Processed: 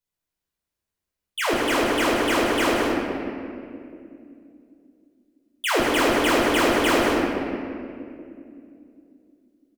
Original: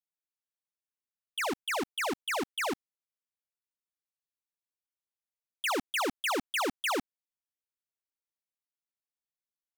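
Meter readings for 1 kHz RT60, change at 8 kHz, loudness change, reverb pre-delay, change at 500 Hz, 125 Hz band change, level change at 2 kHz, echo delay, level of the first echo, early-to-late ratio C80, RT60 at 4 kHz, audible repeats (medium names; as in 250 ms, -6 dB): 2.1 s, +8.0 dB, +10.5 dB, 11 ms, +14.5 dB, +18.5 dB, +10.0 dB, 179 ms, -7.5 dB, -0.5 dB, 1.4 s, 1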